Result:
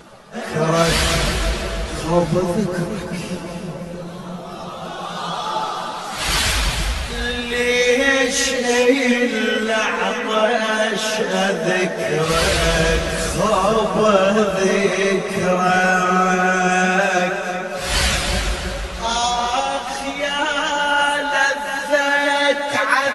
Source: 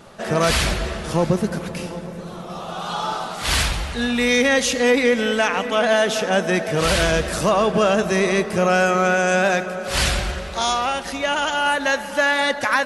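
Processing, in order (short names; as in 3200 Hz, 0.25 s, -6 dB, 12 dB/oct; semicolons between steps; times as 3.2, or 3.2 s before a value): plain phase-vocoder stretch 1.8×; flange 2 Hz, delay 1.7 ms, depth 5.7 ms, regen +60%; feedback echo 0.327 s, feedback 34%, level -8 dB; gain +8 dB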